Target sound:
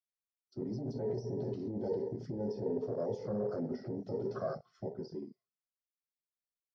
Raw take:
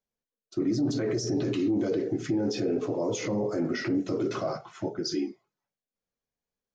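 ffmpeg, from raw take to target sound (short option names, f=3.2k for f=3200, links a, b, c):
-filter_complex "[0:a]superequalizer=6b=0.251:9b=0.251:12b=0.501:14b=2.82:15b=0.398,acrossover=split=240|1400|5100[a][b][c][d];[a]acompressor=threshold=-34dB:ratio=4[e];[b]acompressor=threshold=-21dB:ratio=4[f];[c]acompressor=threshold=-47dB:ratio=4[g];[d]acompressor=threshold=-46dB:ratio=4[h];[e][f][g][h]amix=inputs=4:normalize=0,afwtdn=0.02,volume=-5dB"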